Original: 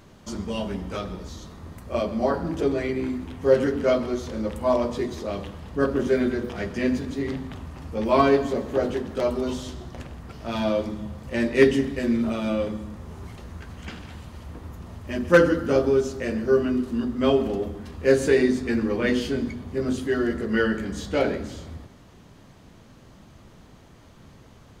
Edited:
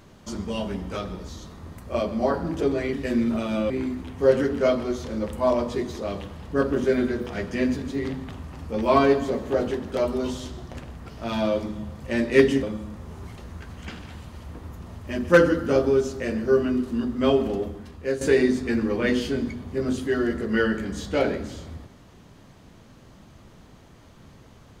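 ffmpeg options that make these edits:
-filter_complex "[0:a]asplit=5[s0][s1][s2][s3][s4];[s0]atrim=end=2.932[s5];[s1]atrim=start=11.858:end=12.632[s6];[s2]atrim=start=2.928:end=11.862[s7];[s3]atrim=start=12.628:end=18.21,asetpts=PTS-STARTPTS,afade=t=out:st=4.962:d=0.62:silence=0.281838[s8];[s4]atrim=start=18.21,asetpts=PTS-STARTPTS,afade=t=in:d=0.004:c=hsin:silence=0.281838[s9];[s5][s6]acrossfade=d=0.004:c1=hsin:c2=hsin[s10];[s10][s7]acrossfade=d=0.004:c1=hsin:c2=hsin[s11];[s8][s9]concat=n=2:v=0:a=1[s12];[s11][s12]acrossfade=d=0.004:c1=hsin:c2=hsin"

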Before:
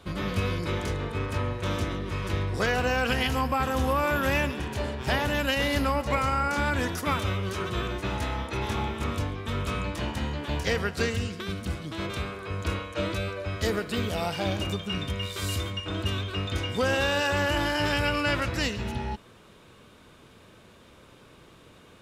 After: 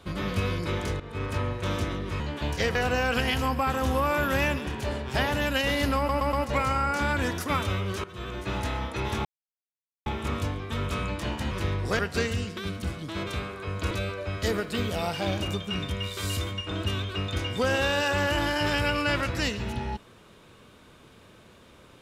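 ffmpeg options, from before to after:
-filter_complex "[0:a]asplit=12[s0][s1][s2][s3][s4][s5][s6][s7][s8][s9][s10][s11];[s0]atrim=end=1,asetpts=PTS-STARTPTS,afade=t=out:st=0.996:d=0.004:c=hsin:silence=0.177828[s12];[s1]atrim=start=1:end=2.202,asetpts=PTS-STARTPTS,afade=t=in:d=0.26:silence=0.177828[s13];[s2]atrim=start=10.268:end=10.822[s14];[s3]atrim=start=2.678:end=6.022[s15];[s4]atrim=start=5.898:end=6.022[s16];[s5]atrim=start=5.898:end=6.022[s17];[s6]atrim=start=5.898:end=7.61,asetpts=PTS-STARTPTS,afade=t=out:st=1.708:d=0.004:c=hsin:silence=0.133352[s18];[s7]atrim=start=7.61:end=8.82,asetpts=PTS-STARTPTS,afade=t=in:d=0.5:silence=0.133352,afade=t=out:st=1.206:d=0.004:c=hsin,apad=pad_dur=0.81[s19];[s8]atrim=start=8.82:end=10.272,asetpts=PTS-STARTPTS,afade=t=in:d=0.004:c=hsin[s20];[s9]atrim=start=2.198:end=2.682[s21];[s10]atrim=start=10.818:end=12.742[s22];[s11]atrim=start=13.098[s23];[s12][s13]concat=n=2:v=0:a=1[s24];[s24][s14]acrossfade=d=0.004:c1=hsin:c2=hsin[s25];[s25][s15]acrossfade=d=0.004:c1=hsin:c2=hsin[s26];[s26][s16]acrossfade=d=0.004:c1=hsin:c2=hsin[s27];[s27][s17]acrossfade=d=0.004:c1=hsin:c2=hsin[s28];[s18][s19][s20]concat=n=3:v=0:a=1[s29];[s28][s29]acrossfade=d=0.004:c1=hsin:c2=hsin[s30];[s30][s21]acrossfade=d=0.004:c1=hsin:c2=hsin[s31];[s31][s22]acrossfade=d=0.004:c1=hsin:c2=hsin[s32];[s32][s23]acrossfade=d=0.004:c1=hsin:c2=hsin"

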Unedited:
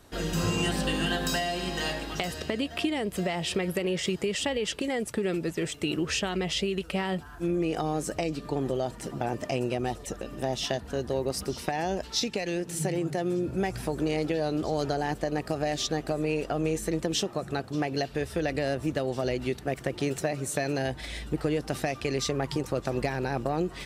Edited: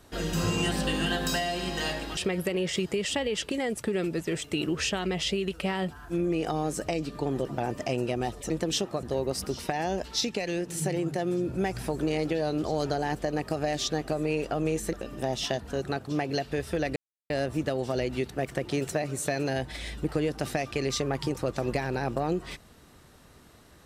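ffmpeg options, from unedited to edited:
-filter_complex "[0:a]asplit=8[s0][s1][s2][s3][s4][s5][s6][s7];[s0]atrim=end=2.172[s8];[s1]atrim=start=3.468:end=8.752[s9];[s2]atrim=start=9.078:end=10.132[s10];[s3]atrim=start=16.918:end=17.452[s11];[s4]atrim=start=11.018:end=16.922[s12];[s5]atrim=start=10.128:end=11.022[s13];[s6]atrim=start=17.448:end=18.59,asetpts=PTS-STARTPTS,afade=t=out:st=1.138:d=0.004:c=hsin,apad=pad_dur=0.34[s14];[s7]atrim=start=18.59,asetpts=PTS-STARTPTS,afade=t=in:d=0.004:c=hsin[s15];[s8][s9]acrossfade=d=0.004:c1=hsin:c2=hsin[s16];[s16][s10]acrossfade=d=0.004:c1=hsin:c2=hsin[s17];[s17][s11]acrossfade=d=0.004:c1=hsin:c2=hsin[s18];[s18][s12]acrossfade=d=0.004:c1=hsin:c2=hsin[s19];[s19][s13]acrossfade=d=0.004:c1=hsin:c2=hsin[s20];[s14][s15]concat=n=2:v=0:a=1[s21];[s20][s21]acrossfade=d=0.004:c1=hsin:c2=hsin"

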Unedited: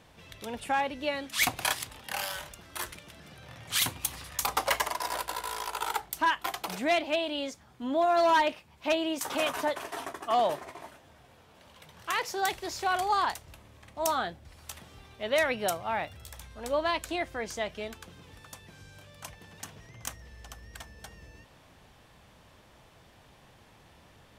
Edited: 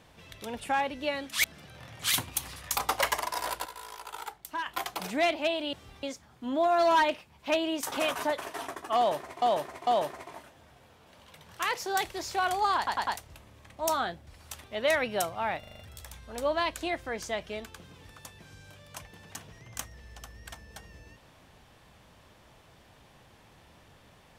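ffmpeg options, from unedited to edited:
-filter_complex "[0:a]asplit=17[s0][s1][s2][s3][s4][s5][s6][s7][s8][s9][s10][s11][s12][s13][s14][s15][s16];[s0]atrim=end=1.442[s17];[s1]atrim=start=3.118:end=5.332[s18];[s2]atrim=start=5.328:end=6.342,asetpts=PTS-STARTPTS,volume=0.376[s19];[s3]atrim=start=6.338:end=7.412[s20];[s4]atrim=start=14.818:end=15.122[s21];[s5]atrim=start=7.408:end=10.802[s22];[s6]atrim=start=10.348:end=10.802[s23];[s7]atrim=start=10.348:end=13.352[s24];[s8]atrim=start=13.248:end=13.352[s25];[s9]atrim=start=13.248:end=13.352[s26];[s10]atrim=start=13.248:end=14.822[s27];[s11]atrim=start=15.118:end=16.112[s28];[s12]atrim=start=16.068:end=16.112[s29];[s13]atrim=start=16.068:end=16.112[s30];[s14]atrim=start=16.068:end=16.112[s31];[s15]atrim=start=16.068:end=16.112[s32];[s16]atrim=start=16.068[s33];[s17][s18]acrossfade=d=0.004:c1=hsin:c2=hsin[s34];[s34][s19]acrossfade=d=0.004:c1=hsin:c2=hsin[s35];[s35][s20]acrossfade=d=0.004:c1=hsin:c2=hsin[s36];[s36][s21]acrossfade=d=0.004:c1=hsin:c2=hsin[s37];[s37][s22]acrossfade=d=0.004:c1=hsin:c2=hsin[s38];[s38][s23]acrossfade=d=0.004:c1=hsin:c2=hsin[s39];[s39][s24]acrossfade=d=0.004:c1=hsin:c2=hsin[s40];[s40][s25]acrossfade=d=0.004:c1=hsin:c2=hsin[s41];[s41][s26]acrossfade=d=0.004:c1=hsin:c2=hsin[s42];[s42][s27]acrossfade=d=0.004:c1=hsin:c2=hsin[s43];[s43][s28]acrossfade=d=0.004:c1=hsin:c2=hsin[s44];[s44][s29]acrossfade=d=0.004:c1=hsin:c2=hsin[s45];[s45][s30]acrossfade=d=0.004:c1=hsin:c2=hsin[s46];[s46][s31]acrossfade=d=0.004:c1=hsin:c2=hsin[s47];[s47][s32]acrossfade=d=0.004:c1=hsin:c2=hsin[s48];[s48][s33]acrossfade=d=0.004:c1=hsin:c2=hsin"

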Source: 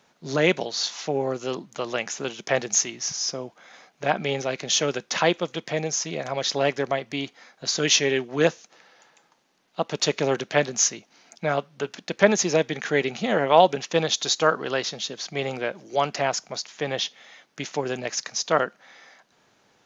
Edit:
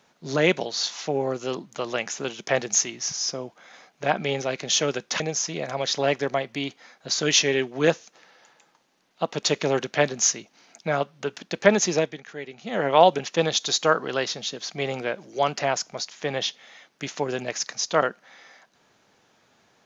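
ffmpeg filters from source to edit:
-filter_complex "[0:a]asplit=4[s0][s1][s2][s3];[s0]atrim=end=5.202[s4];[s1]atrim=start=5.768:end=12.78,asetpts=PTS-STARTPTS,afade=t=out:st=6.732:d=0.28:silence=0.211349[s5];[s2]atrim=start=12.78:end=13.18,asetpts=PTS-STARTPTS,volume=0.211[s6];[s3]atrim=start=13.18,asetpts=PTS-STARTPTS,afade=t=in:d=0.28:silence=0.211349[s7];[s5][s6][s7]concat=n=3:v=0:a=1[s8];[s4][s8]acrossfade=d=0.004:c1=hsin:c2=hsin"

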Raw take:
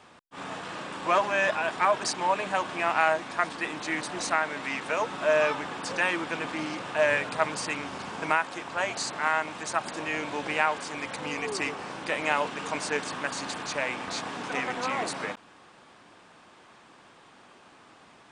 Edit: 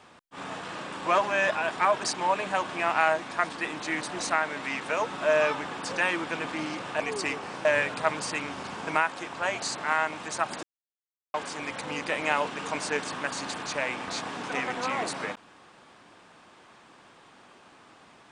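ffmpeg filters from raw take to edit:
-filter_complex "[0:a]asplit=6[s0][s1][s2][s3][s4][s5];[s0]atrim=end=7.002[s6];[s1]atrim=start=11.358:end=12.012[s7];[s2]atrim=start=6.998:end=9.98,asetpts=PTS-STARTPTS,afade=t=out:st=2.978:d=0.004:c=hsin[s8];[s3]atrim=start=9.98:end=10.69,asetpts=PTS-STARTPTS,volume=0[s9];[s4]atrim=start=10.69:end=11.362,asetpts=PTS-STARTPTS,afade=t=in:d=0.004:c=hsin[s10];[s5]atrim=start=12.008[s11];[s6][s7]acrossfade=d=0.004:c1=hsin:c2=hsin[s12];[s8][s9][s10]concat=n=3:v=0:a=1[s13];[s12][s13]acrossfade=d=0.004:c1=hsin:c2=hsin[s14];[s14][s11]acrossfade=d=0.004:c1=hsin:c2=hsin"

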